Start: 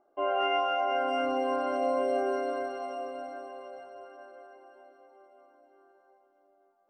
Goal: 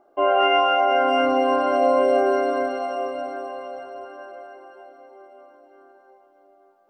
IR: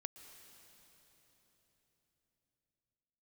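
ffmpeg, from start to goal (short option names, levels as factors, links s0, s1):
-filter_complex "[0:a]asplit=2[s0][s1];[1:a]atrim=start_sample=2205,lowpass=6300[s2];[s1][s2]afir=irnorm=-1:irlink=0,volume=1[s3];[s0][s3]amix=inputs=2:normalize=0,volume=2"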